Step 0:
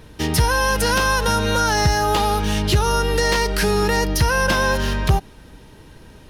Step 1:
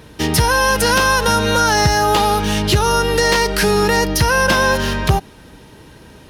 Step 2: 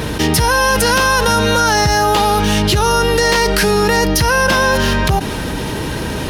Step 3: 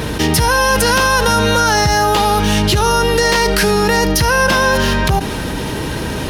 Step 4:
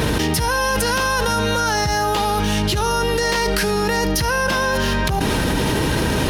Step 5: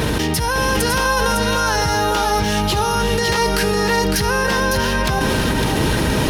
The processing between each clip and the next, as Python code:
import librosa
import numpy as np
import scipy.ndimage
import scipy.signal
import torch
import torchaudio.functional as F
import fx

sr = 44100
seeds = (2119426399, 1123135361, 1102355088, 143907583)

y1 = fx.highpass(x, sr, hz=93.0, slope=6)
y1 = F.gain(torch.from_numpy(y1), 4.5).numpy()
y2 = fx.env_flatten(y1, sr, amount_pct=70)
y2 = F.gain(torch.from_numpy(y2), -2.0).numpy()
y3 = y2 + 10.0 ** (-18.0 / 20.0) * np.pad(y2, (int(76 * sr / 1000.0), 0))[:len(y2)]
y4 = fx.env_flatten(y3, sr, amount_pct=100)
y4 = F.gain(torch.from_numpy(y4), -8.0).numpy()
y5 = y4 + 10.0 ** (-4.5 / 20.0) * np.pad(y4, (int(556 * sr / 1000.0), 0))[:len(y4)]